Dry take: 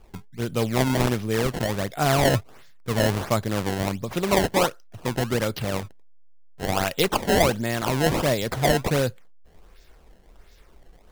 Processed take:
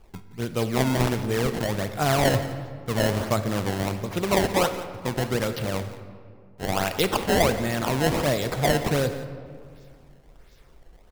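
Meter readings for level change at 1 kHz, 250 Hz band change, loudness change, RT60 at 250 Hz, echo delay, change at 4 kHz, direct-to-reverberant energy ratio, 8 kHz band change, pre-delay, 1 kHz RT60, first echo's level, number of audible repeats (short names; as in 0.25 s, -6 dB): -1.0 dB, -0.5 dB, -1.0 dB, 2.5 s, 0.172 s, -1.0 dB, 9.0 dB, -1.0 dB, 37 ms, 2.0 s, -16.0 dB, 1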